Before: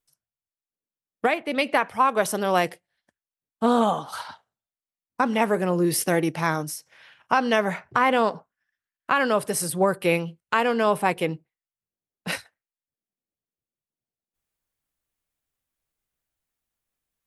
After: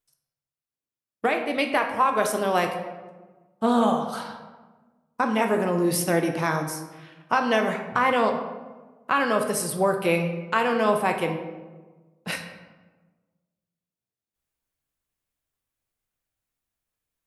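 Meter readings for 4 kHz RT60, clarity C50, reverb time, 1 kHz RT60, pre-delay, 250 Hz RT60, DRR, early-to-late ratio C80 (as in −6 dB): 0.70 s, 7.0 dB, 1.3 s, 1.2 s, 11 ms, 1.6 s, 4.0 dB, 9.0 dB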